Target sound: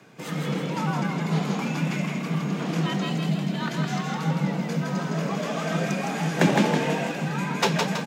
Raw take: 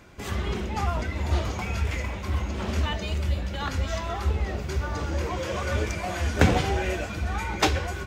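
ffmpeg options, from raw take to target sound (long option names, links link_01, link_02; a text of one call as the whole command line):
ffmpeg -i in.wav -filter_complex "[0:a]asplit=7[link_01][link_02][link_03][link_04][link_05][link_06][link_07];[link_02]adelay=162,afreqshift=32,volume=-3.5dB[link_08];[link_03]adelay=324,afreqshift=64,volume=-9.9dB[link_09];[link_04]adelay=486,afreqshift=96,volume=-16.3dB[link_10];[link_05]adelay=648,afreqshift=128,volume=-22.6dB[link_11];[link_06]adelay=810,afreqshift=160,volume=-29dB[link_12];[link_07]adelay=972,afreqshift=192,volume=-35.4dB[link_13];[link_01][link_08][link_09][link_10][link_11][link_12][link_13]amix=inputs=7:normalize=0,afreqshift=89,volume=-1dB" out.wav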